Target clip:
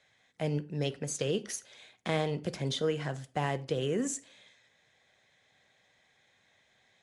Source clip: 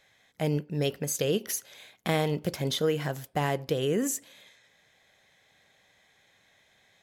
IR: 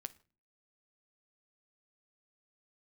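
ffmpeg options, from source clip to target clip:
-filter_complex "[0:a]highpass=40,acrossover=split=130|6600[a][b][c];[c]acrusher=bits=3:mode=log:mix=0:aa=0.000001[d];[a][b][d]amix=inputs=3:normalize=0[e];[1:a]atrim=start_sample=2205,afade=t=out:st=0.16:d=0.01,atrim=end_sample=7497[f];[e][f]afir=irnorm=-1:irlink=0" -ar 22050 -c:a nellymoser

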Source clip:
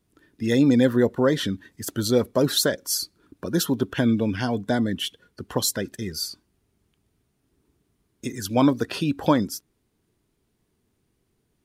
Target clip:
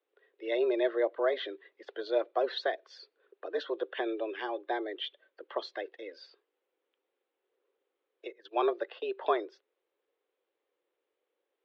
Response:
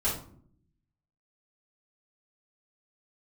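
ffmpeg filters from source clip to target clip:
-filter_complex "[0:a]asplit=3[a][b][c];[a]afade=t=out:st=8.28:d=0.02[d];[b]agate=range=-18dB:threshold=-29dB:ratio=16:detection=peak,afade=t=in:st=8.28:d=0.02,afade=t=out:st=9.08:d=0.02[e];[c]afade=t=in:st=9.08:d=0.02[f];[d][e][f]amix=inputs=3:normalize=0,highpass=f=280:t=q:w=0.5412,highpass=f=280:t=q:w=1.307,lowpass=f=3.5k:t=q:w=0.5176,lowpass=f=3.5k:t=q:w=0.7071,lowpass=f=3.5k:t=q:w=1.932,afreqshift=110,volume=-7.5dB"

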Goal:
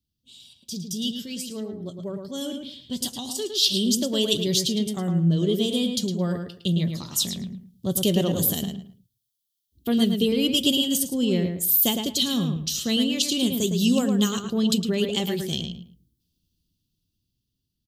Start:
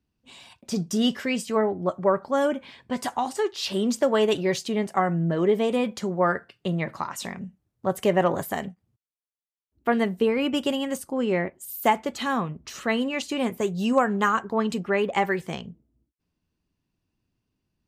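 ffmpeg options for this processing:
-filter_complex "[0:a]firequalizer=gain_entry='entry(120,0);entry(830,-23);entry(2200,-19);entry(3200,7);entry(8100,4);entry(12000,10)':delay=0.05:min_phase=1,dynaudnorm=f=560:g=9:m=13dB,asplit=2[a][b];[b]adelay=109,lowpass=f=3.1k:p=1,volume=-5dB,asplit=2[c][d];[d]adelay=109,lowpass=f=3.1k:p=1,volume=0.25,asplit=2[e][f];[f]adelay=109,lowpass=f=3.1k:p=1,volume=0.25[g];[c][e][g]amix=inputs=3:normalize=0[h];[a][h]amix=inputs=2:normalize=0,volume=-4.5dB"

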